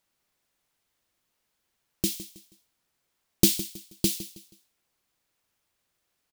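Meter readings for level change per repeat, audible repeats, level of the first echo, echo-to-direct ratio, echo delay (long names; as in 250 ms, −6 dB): −9.5 dB, 3, −15.0 dB, −14.5 dB, 160 ms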